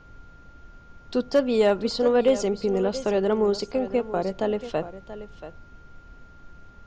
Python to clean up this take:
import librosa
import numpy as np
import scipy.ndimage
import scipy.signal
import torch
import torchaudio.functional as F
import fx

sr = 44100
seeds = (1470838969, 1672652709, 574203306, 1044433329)

y = fx.fix_declip(x, sr, threshold_db=-11.5)
y = fx.notch(y, sr, hz=1400.0, q=30.0)
y = fx.noise_reduce(y, sr, print_start_s=0.37, print_end_s=0.87, reduce_db=21.0)
y = fx.fix_echo_inverse(y, sr, delay_ms=682, level_db=-13.5)